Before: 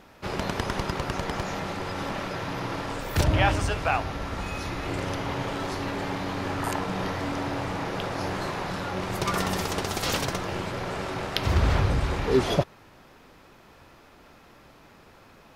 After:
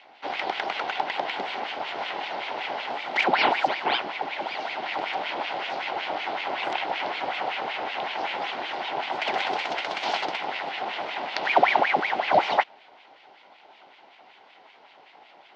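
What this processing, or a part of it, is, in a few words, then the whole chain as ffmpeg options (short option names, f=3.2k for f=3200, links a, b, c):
voice changer toy: -af "aeval=exprs='val(0)*sin(2*PI*1300*n/s+1300*0.85/5.3*sin(2*PI*5.3*n/s))':c=same,highpass=480,equalizer=f=490:t=q:w=4:g=-5,equalizer=f=780:t=q:w=4:g=7,equalizer=f=1.2k:t=q:w=4:g=-10,equalizer=f=1.7k:t=q:w=4:g=-9,equalizer=f=2.5k:t=q:w=4:g=-5,equalizer=f=3.7k:t=q:w=4:g=-3,lowpass=f=3.9k:w=0.5412,lowpass=f=3.9k:w=1.3066,volume=7dB"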